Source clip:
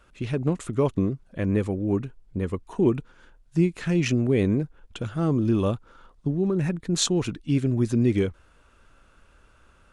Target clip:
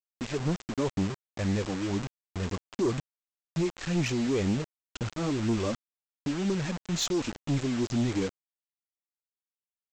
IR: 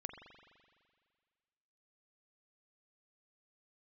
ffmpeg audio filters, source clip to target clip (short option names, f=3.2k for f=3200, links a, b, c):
-af "adynamicequalizer=threshold=0.0112:dfrequency=110:dqfactor=3.7:tfrequency=110:tqfactor=3.7:attack=5:release=100:ratio=0.375:range=2.5:mode=cutabove:tftype=bell,flanger=delay=0.1:depth=4.3:regen=13:speed=2:shape=triangular,aresample=16000,acrusher=bits=5:mix=0:aa=0.000001,aresample=44100,asoftclip=type=tanh:threshold=-21dB"